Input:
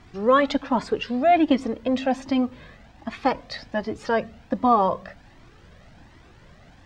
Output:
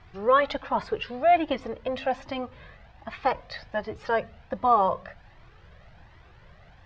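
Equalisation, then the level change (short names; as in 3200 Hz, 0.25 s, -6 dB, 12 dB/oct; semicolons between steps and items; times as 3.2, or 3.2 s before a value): air absorption 160 m; bell 260 Hz -14.5 dB 0.82 oct; 0.0 dB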